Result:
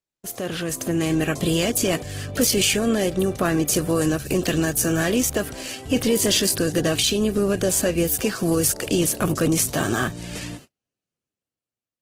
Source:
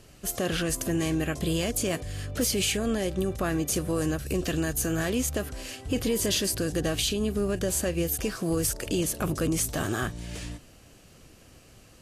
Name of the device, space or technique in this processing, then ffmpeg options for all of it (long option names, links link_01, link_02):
video call: -af "highpass=110,dynaudnorm=framelen=130:gausssize=13:maxgain=7dB,agate=range=-41dB:threshold=-41dB:ratio=16:detection=peak" -ar 48000 -c:a libopus -b:a 16k